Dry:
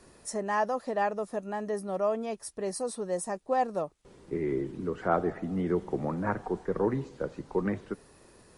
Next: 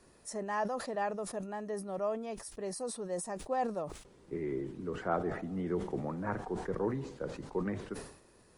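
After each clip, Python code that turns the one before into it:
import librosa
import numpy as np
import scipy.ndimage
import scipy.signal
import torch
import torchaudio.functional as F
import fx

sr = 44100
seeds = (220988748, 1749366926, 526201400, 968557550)

y = fx.sustainer(x, sr, db_per_s=90.0)
y = y * librosa.db_to_amplitude(-6.0)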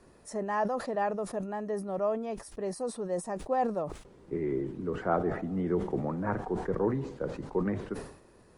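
y = fx.high_shelf(x, sr, hz=2400.0, db=-8.5)
y = y * librosa.db_to_amplitude(5.0)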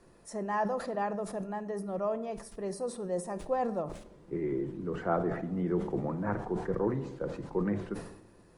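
y = fx.room_shoebox(x, sr, seeds[0], volume_m3=2000.0, walls='furnished', distance_m=0.8)
y = y * librosa.db_to_amplitude(-2.0)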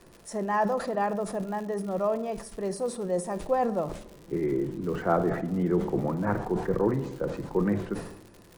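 y = fx.dmg_crackle(x, sr, seeds[1], per_s=160.0, level_db=-44.0)
y = y * librosa.db_to_amplitude(5.0)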